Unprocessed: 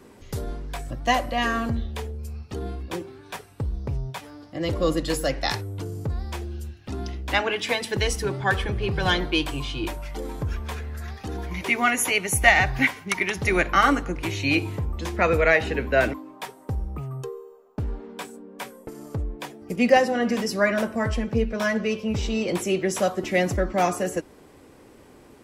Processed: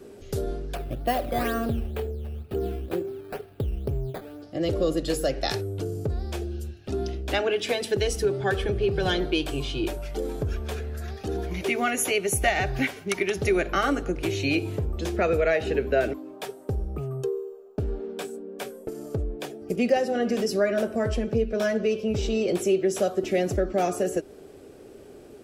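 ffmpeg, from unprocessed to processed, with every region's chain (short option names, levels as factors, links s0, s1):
-filter_complex "[0:a]asettb=1/sr,asplit=3[s0][s1][s2];[s0]atrim=end=0.754[s3];[s1]atrim=start=0.75:end=4.42,asetpts=PTS-STARTPTS,afade=t=in:d=0.004:c=qsin,afade=t=out:st=3.666:d=0.004:c=qsin,acrusher=samples=11:mix=1:aa=0.000001:lfo=1:lforange=11:lforate=2.1,equalizer=f=6400:w=1.1:g=-14[s4];[s2]atrim=start=4.416[s5];[s3][s4]acrossfade=d=0.004:c1=hsin:c2=qsin[s6];[s6][s5]acrossfade=d=0.004:c1=qsin:c2=hsin,equalizer=f=400:t=o:w=0.33:g=10,equalizer=f=630:t=o:w=0.33:g=5,equalizer=f=1000:t=o:w=0.33:g=-11,equalizer=f=2000:t=o:w=0.33:g=-6,acompressor=threshold=0.0708:ratio=2"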